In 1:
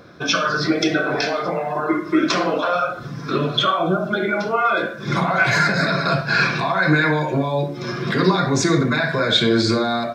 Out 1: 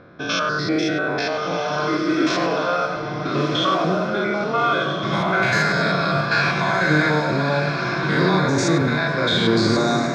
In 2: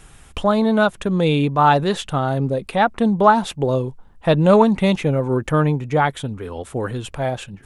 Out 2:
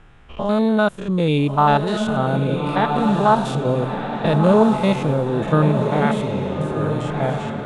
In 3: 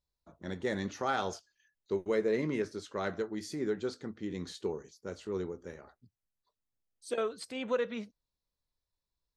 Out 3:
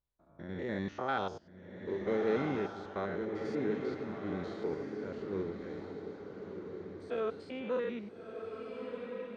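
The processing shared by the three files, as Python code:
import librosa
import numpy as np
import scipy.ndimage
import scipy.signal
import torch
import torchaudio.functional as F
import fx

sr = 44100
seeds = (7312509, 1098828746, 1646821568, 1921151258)

y = fx.spec_steps(x, sr, hold_ms=100)
y = fx.echo_diffused(y, sr, ms=1330, feedback_pct=43, wet_db=-5)
y = fx.env_lowpass(y, sr, base_hz=2400.0, full_db=-14.5)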